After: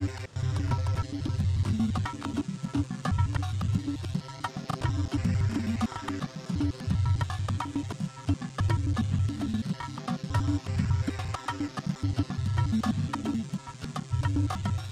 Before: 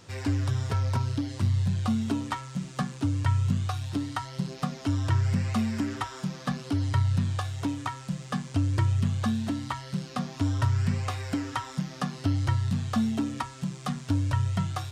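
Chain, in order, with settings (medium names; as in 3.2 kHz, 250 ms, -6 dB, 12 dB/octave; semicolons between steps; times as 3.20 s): slices played last to first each 86 ms, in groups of 4; granulator, spray 21 ms, pitch spread up and down by 0 st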